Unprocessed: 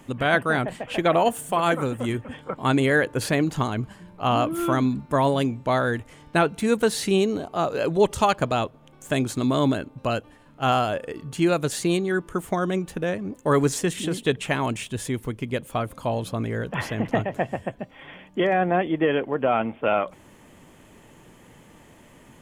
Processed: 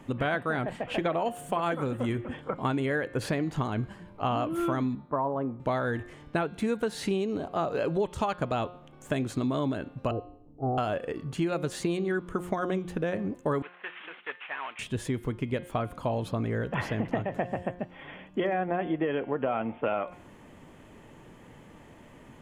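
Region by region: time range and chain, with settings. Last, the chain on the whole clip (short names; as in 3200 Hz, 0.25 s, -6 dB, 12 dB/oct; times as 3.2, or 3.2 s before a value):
4.95–5.6 Chebyshev low-pass 1100 Hz, order 3 + tilt +3 dB/oct
10.11–10.78 inverse Chebyshev low-pass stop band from 3400 Hz, stop band 80 dB + comb 2.6 ms, depth 58%
13.62–14.79 CVSD 16 kbps + HPF 1400 Hz
whole clip: high shelf 4400 Hz -11 dB; de-hum 178 Hz, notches 29; compressor, threshold -25 dBFS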